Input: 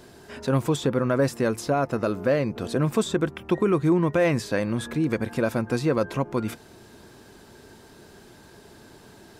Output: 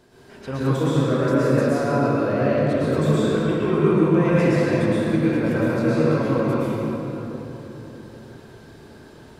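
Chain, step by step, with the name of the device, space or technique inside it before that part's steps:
swimming-pool hall (convolution reverb RT60 3.7 s, pre-delay 105 ms, DRR −10 dB; high-shelf EQ 5,700 Hz −5.5 dB)
level −7 dB

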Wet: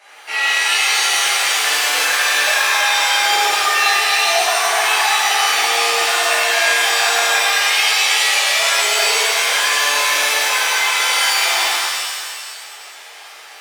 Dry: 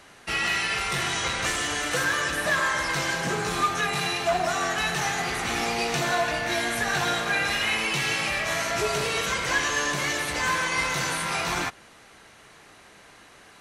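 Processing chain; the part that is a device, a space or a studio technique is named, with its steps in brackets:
laptop speaker (high-pass filter 440 Hz 24 dB per octave; parametric band 830 Hz +9 dB 0.27 octaves; parametric band 2,300 Hz +6.5 dB 0.56 octaves; brickwall limiter −17 dBFS, peak gain reduction 7 dB)
0:00.59–0:01.10: high-pass filter 290 Hz 24 dB per octave
reverb with rising layers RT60 1.7 s, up +7 semitones, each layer −2 dB, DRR −10.5 dB
level −3.5 dB

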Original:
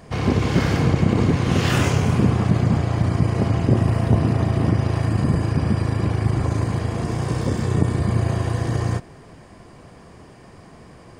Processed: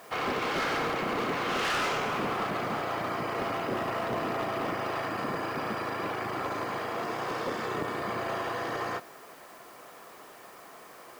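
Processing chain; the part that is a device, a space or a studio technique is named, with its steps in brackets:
drive-through speaker (band-pass filter 530–3,800 Hz; parametric band 1,300 Hz +7.5 dB 0.2 octaves; hard clipping −26 dBFS, distortion −11 dB; white noise bed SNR 25 dB)

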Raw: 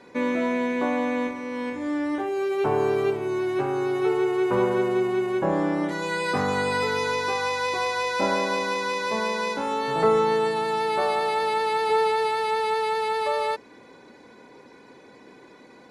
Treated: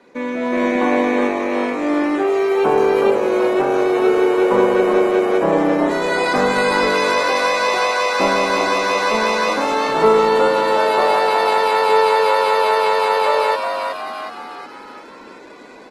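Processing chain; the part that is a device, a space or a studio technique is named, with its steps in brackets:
echo with shifted repeats 368 ms, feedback 51%, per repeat +97 Hz, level −6 dB
video call (high-pass filter 180 Hz 24 dB per octave; automatic gain control gain up to 8 dB; Opus 16 kbit/s 48,000 Hz)

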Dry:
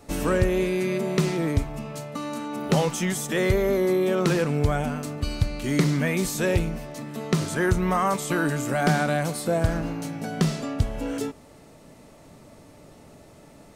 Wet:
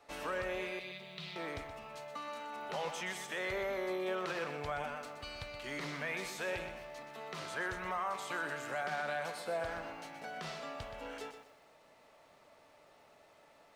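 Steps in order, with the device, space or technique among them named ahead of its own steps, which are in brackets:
0:00.79–0:01.36: drawn EQ curve 180 Hz 0 dB, 260 Hz −17 dB, 1,700 Hz −11 dB, 3,800 Hz +5 dB, 6,400 Hz −12 dB
DJ mixer with the lows and highs turned down (three-way crossover with the lows and the highs turned down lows −20 dB, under 540 Hz, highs −14 dB, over 4,500 Hz; brickwall limiter −22 dBFS, peak gain reduction 9 dB)
feedback echo at a low word length 124 ms, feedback 35%, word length 10 bits, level −9 dB
level −6.5 dB

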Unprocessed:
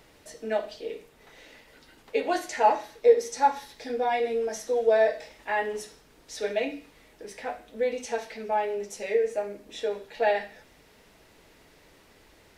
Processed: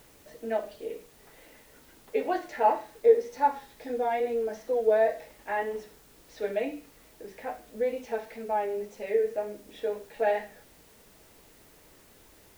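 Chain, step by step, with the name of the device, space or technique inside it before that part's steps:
cassette deck with a dirty head (head-to-tape spacing loss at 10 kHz 27 dB; tape wow and flutter; white noise bed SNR 29 dB)

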